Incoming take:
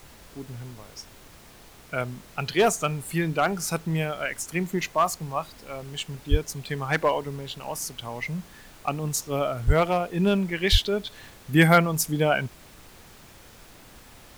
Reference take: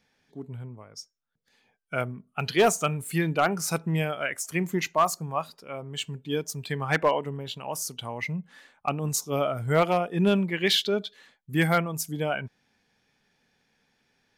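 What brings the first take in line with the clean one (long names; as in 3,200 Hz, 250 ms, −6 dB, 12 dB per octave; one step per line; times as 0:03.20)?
high-pass at the plosives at 0:06.30/0:09.66/0:10.71
broadband denoise 21 dB, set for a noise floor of −49 dBFS
level correction −6 dB, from 0:11.07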